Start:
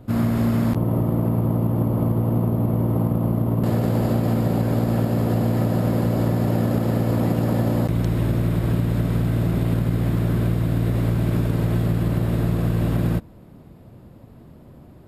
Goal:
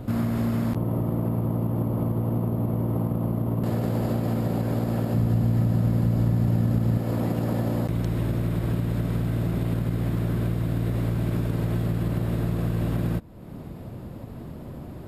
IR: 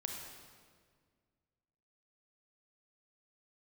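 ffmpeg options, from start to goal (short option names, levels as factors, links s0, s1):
-filter_complex "[0:a]asplit=3[s0][s1][s2];[s0]afade=t=out:st=5.14:d=0.02[s3];[s1]asubboost=boost=3:cutoff=230,afade=t=in:st=5.14:d=0.02,afade=t=out:st=6.97:d=0.02[s4];[s2]afade=t=in:st=6.97:d=0.02[s5];[s3][s4][s5]amix=inputs=3:normalize=0,acompressor=threshold=0.00891:ratio=2,volume=2.51"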